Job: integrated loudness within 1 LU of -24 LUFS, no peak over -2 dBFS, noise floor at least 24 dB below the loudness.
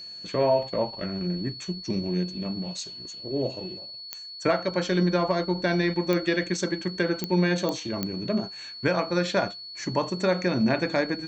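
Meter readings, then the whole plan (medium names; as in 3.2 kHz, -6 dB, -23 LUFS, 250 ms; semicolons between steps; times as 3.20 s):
clicks found 5; steady tone 4.4 kHz; tone level -38 dBFS; loudness -27.0 LUFS; peak level -11.0 dBFS; loudness target -24.0 LUFS
-> de-click; band-stop 4.4 kHz, Q 30; trim +3 dB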